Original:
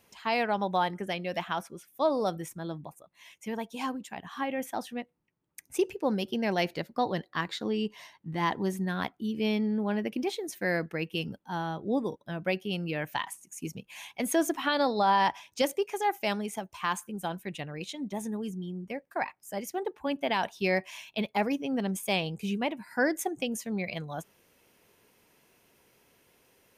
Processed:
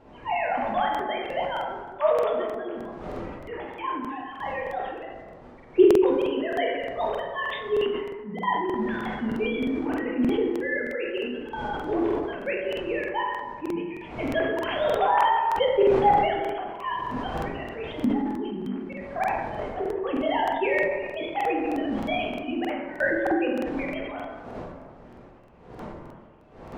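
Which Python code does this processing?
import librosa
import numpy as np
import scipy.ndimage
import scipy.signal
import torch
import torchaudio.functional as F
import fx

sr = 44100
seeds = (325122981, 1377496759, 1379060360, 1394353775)

y = fx.sine_speech(x, sr)
y = fx.dmg_wind(y, sr, seeds[0], corner_hz=590.0, level_db=-47.0)
y = fx.rev_plate(y, sr, seeds[1], rt60_s=1.6, hf_ratio=0.45, predelay_ms=0, drr_db=-2.0)
y = fx.buffer_crackle(y, sr, first_s=0.9, period_s=0.31, block=2048, kind='repeat')
y = fx.sustainer(y, sr, db_per_s=43.0)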